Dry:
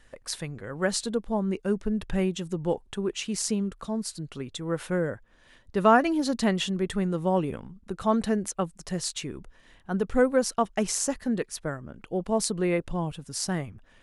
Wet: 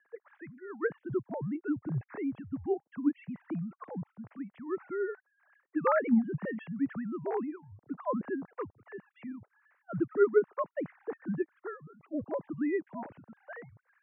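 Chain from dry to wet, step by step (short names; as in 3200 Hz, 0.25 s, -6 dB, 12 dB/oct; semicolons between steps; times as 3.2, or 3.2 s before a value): sine-wave speech; mistuned SSB -89 Hz 200–2100 Hz; gain -6 dB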